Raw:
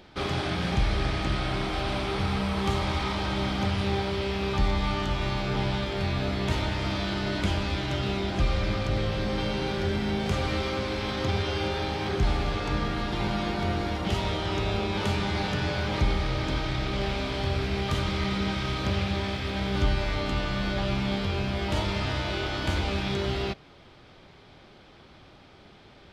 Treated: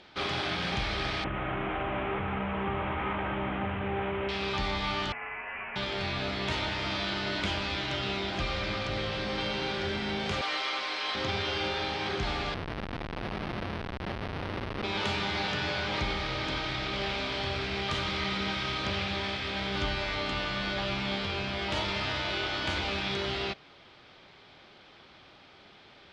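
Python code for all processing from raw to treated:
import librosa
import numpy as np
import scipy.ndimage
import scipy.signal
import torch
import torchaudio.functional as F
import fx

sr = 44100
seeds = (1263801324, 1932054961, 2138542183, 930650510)

y = fx.chain(x, sr, fx.cvsd(bps=16000),
    fx.lowpass(hz=1400.0, slope=6),
    fx.env_flatten(amount_pct=50), at=(1.24, 4.29))
y = fx.chain(y, sr, fx.highpass(hz=1300.0, slope=12),
    fx.freq_invert(carrier_hz=3200), at=(5.12, 5.76))
y = fx.chain(y, sr, fx.highpass(hz=550.0, slope=12),
    fx.comb(ms=6.6, depth=0.56), at=(10.41, 11.15))
y = fx.chain(y, sr, fx.delta_mod(bps=32000, step_db=-29.5),
    fx.schmitt(flips_db=-25.0),
    fx.resample_linear(factor=6), at=(12.54, 14.84))
y = scipy.signal.sosfilt(scipy.signal.butter(2, 4200.0, 'lowpass', fs=sr, output='sos'), y)
y = fx.tilt_eq(y, sr, slope=2.5)
y = y * librosa.db_to_amplitude(-1.0)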